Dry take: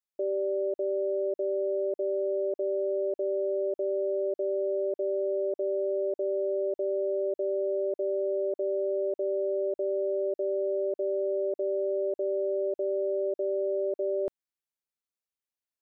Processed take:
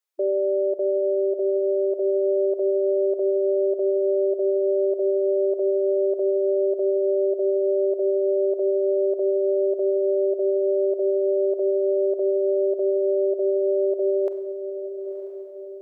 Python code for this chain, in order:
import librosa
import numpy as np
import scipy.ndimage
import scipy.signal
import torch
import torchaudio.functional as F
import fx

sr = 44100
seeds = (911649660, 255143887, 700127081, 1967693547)

y = fx.brickwall_highpass(x, sr, low_hz=330.0)
y = fx.echo_diffused(y, sr, ms=992, feedback_pct=45, wet_db=-10.0)
y = fx.rev_schroeder(y, sr, rt60_s=1.0, comb_ms=31, drr_db=10.0)
y = F.gain(torch.from_numpy(y), 6.5).numpy()